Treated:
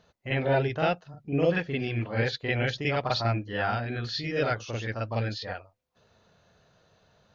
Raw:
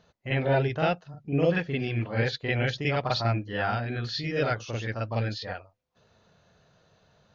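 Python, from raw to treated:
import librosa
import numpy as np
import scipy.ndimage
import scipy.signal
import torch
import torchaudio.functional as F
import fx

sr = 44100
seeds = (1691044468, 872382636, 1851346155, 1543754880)

y = fx.peak_eq(x, sr, hz=150.0, db=-2.5, octaves=0.77)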